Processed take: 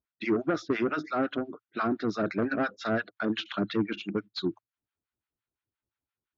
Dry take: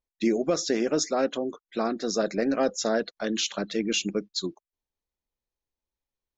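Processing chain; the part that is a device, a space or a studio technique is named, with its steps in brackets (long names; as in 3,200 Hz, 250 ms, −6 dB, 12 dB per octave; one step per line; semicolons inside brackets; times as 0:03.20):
guitar amplifier with harmonic tremolo (two-band tremolo in antiphase 5.8 Hz, depth 100%, crossover 830 Hz; soft clipping −24.5 dBFS, distortion −13 dB; loudspeaker in its box 77–3,500 Hz, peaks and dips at 110 Hz +9 dB, 300 Hz +4 dB, 510 Hz −8 dB, 850 Hz −3 dB, 1,400 Hz +9 dB)
level +5 dB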